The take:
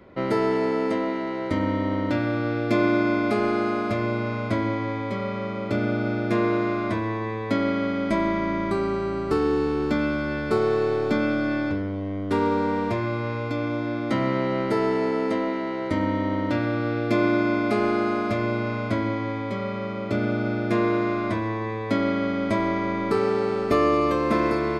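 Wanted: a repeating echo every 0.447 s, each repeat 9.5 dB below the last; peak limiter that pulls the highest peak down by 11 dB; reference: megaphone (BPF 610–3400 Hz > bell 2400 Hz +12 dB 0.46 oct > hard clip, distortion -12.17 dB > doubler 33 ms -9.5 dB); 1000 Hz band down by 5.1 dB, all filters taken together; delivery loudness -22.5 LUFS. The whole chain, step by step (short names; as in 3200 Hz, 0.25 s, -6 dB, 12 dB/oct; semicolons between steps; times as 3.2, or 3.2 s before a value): bell 1000 Hz -6 dB; limiter -21 dBFS; BPF 610–3400 Hz; bell 2400 Hz +12 dB 0.46 oct; feedback echo 0.447 s, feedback 33%, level -9.5 dB; hard clip -32 dBFS; doubler 33 ms -9.5 dB; gain +12 dB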